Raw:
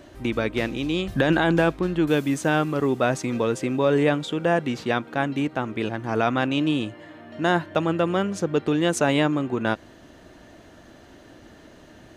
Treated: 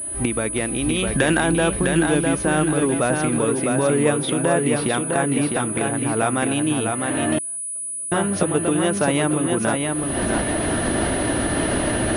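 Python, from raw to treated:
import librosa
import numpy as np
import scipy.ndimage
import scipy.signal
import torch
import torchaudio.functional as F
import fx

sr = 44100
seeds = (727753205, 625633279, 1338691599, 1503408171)

y = fx.recorder_agc(x, sr, target_db=-15.0, rise_db_per_s=53.0, max_gain_db=30)
y = fx.dynamic_eq(y, sr, hz=2600.0, q=0.71, threshold_db=-38.0, ratio=4.0, max_db=6, at=(0.93, 1.41))
y = fx.echo_feedback(y, sr, ms=655, feedback_pct=41, wet_db=-4)
y = fx.gate_flip(y, sr, shuts_db=-21.0, range_db=-40, at=(7.38, 8.12))
y = fx.pwm(y, sr, carrier_hz=9900.0)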